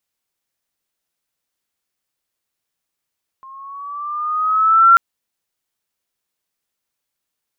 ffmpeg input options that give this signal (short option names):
-f lavfi -i "aevalsrc='pow(10,(-4.5+31*(t/1.54-1))/20)*sin(2*PI*1060*1.54/(4.5*log(2)/12)*(exp(4.5*log(2)/12*t/1.54)-1))':d=1.54:s=44100"